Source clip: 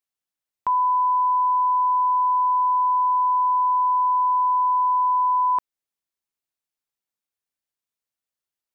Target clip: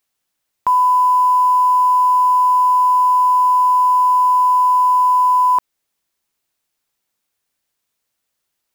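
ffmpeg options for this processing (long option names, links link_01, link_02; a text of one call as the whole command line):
ffmpeg -i in.wav -af "acrusher=bits=7:mode=log:mix=0:aa=0.000001,alimiter=level_in=23dB:limit=-1dB:release=50:level=0:latency=1,volume=-9dB" out.wav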